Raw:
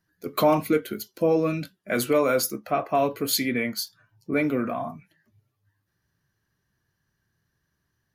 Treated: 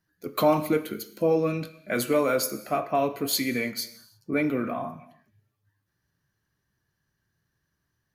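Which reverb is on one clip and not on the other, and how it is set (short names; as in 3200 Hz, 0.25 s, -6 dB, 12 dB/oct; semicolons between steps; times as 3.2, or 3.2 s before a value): non-linear reverb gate 0.36 s falling, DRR 11.5 dB; gain -2 dB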